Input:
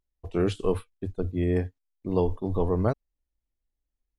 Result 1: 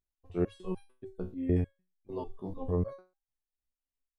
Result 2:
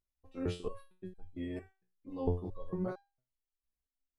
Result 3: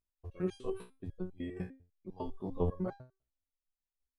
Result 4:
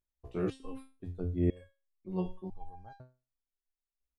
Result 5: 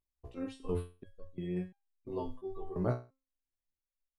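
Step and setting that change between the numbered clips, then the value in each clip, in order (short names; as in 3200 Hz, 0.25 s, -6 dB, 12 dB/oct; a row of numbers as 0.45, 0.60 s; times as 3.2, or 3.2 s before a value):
stepped resonator, rate: 6.7, 4.4, 10, 2, 2.9 Hz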